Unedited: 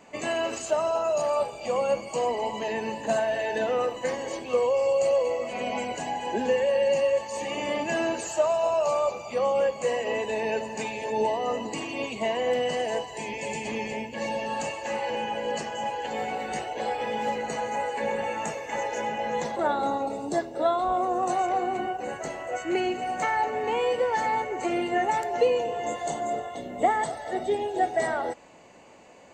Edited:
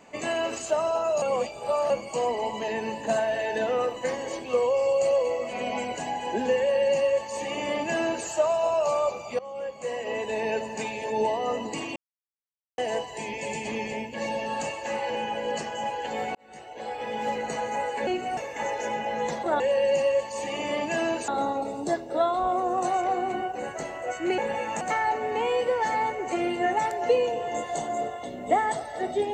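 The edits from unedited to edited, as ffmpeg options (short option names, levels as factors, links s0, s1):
-filter_complex "[0:a]asplit=13[s0][s1][s2][s3][s4][s5][s6][s7][s8][s9][s10][s11][s12];[s0]atrim=end=1.222[s13];[s1]atrim=start=1.218:end=1.902,asetpts=PTS-STARTPTS,areverse[s14];[s2]atrim=start=1.898:end=9.39,asetpts=PTS-STARTPTS,afade=t=out:st=7.488:d=0.004:c=hsin:silence=0.112202[s15];[s3]atrim=start=9.39:end=11.96,asetpts=PTS-STARTPTS,afade=t=in:d=1.02:silence=0.112202,afade=t=out:st=2.566:d=0.004:c=hsin[s16];[s4]atrim=start=11.96:end=12.78,asetpts=PTS-STARTPTS,volume=0[s17];[s5]atrim=start=12.78:end=16.35,asetpts=PTS-STARTPTS,afade=t=in:d=0.004:c=hsin,afade=t=out:st=3.566:d=0.004:c=hsin[s18];[s6]atrim=start=16.35:end=18.072,asetpts=PTS-STARTPTS,afade=t=in:d=1[s19];[s7]atrim=start=22.828:end=23.132[s20];[s8]atrim=start=18.498:end=19.732[s21];[s9]atrim=start=6.578:end=8.262[s22];[s10]atrim=start=19.728:end=22.832[s23];[s11]atrim=start=18.068:end=18.502[s24];[s12]atrim=start=23.128[s25];[s13][s14]acrossfade=d=0.004:c1=hsin:c2=hsin[s26];[s15][s16][s17][s18][s19]concat=n=5:v=0:a=1[s27];[s26][s27]acrossfade=d=0.004:c1=hsin:c2=hsin[s28];[s28][s20]acrossfade=d=0.004:c1=hsin:c2=hsin[s29];[s29][s21]acrossfade=d=0.004:c1=hsin:c2=hsin[s30];[s30][s22]acrossfade=d=0.004:c1=hsin:c2=hsin[s31];[s31][s23]acrossfade=d=0.004:c1=hsin:c2=hsin[s32];[s32][s24]acrossfade=d=0.004:c1=hsin:c2=hsin[s33];[s33][s25]acrossfade=d=0.004:c1=hsin:c2=hsin"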